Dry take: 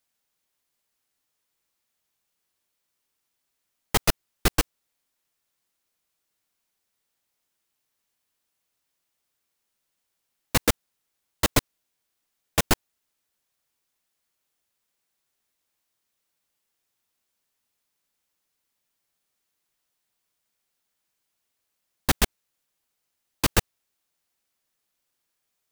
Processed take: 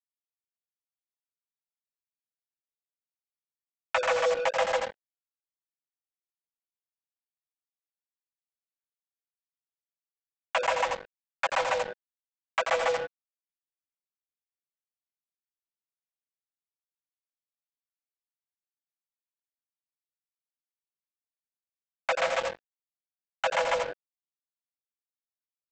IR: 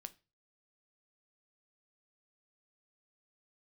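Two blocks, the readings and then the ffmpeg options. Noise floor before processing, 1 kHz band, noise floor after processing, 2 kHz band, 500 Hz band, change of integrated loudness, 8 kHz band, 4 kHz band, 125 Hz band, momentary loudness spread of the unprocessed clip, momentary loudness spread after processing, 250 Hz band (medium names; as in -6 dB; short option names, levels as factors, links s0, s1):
-79 dBFS, +4.0 dB, under -85 dBFS, +1.5 dB, +5.5 dB, -3.0 dB, -13.0 dB, -6.0 dB, -23.5 dB, 5 LU, 11 LU, -20.5 dB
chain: -filter_complex "[0:a]asplit=2[s0][s1];[1:a]atrim=start_sample=2205,asetrate=43218,aresample=44100,adelay=147[s2];[s1][s2]afir=irnorm=-1:irlink=0,volume=1.33[s3];[s0][s3]amix=inputs=2:normalize=0,afreqshift=490,highpass=f=330:w=0.5412,highpass=f=330:w=1.3066,alimiter=limit=0.282:level=0:latency=1:release=16,lowpass=f=2800:w=0.5412,lowpass=f=2800:w=1.3066,bandreject=f=60:t=h:w=6,bandreject=f=120:t=h:w=6,bandreject=f=180:t=h:w=6,bandreject=f=240:t=h:w=6,bandreject=f=300:t=h:w=6,bandreject=f=360:t=h:w=6,bandreject=f=420:t=h:w=6,bandreject=f=480:t=h:w=6,bandreject=f=540:t=h:w=6,bandreject=f=600:t=h:w=6,aecho=1:1:6.1:0.61,aecho=1:1:84:0.447,acompressor=threshold=0.0282:ratio=2,aresample=16000,acrusher=bits=5:mix=0:aa=0.5,aresample=44100,volume=1.5"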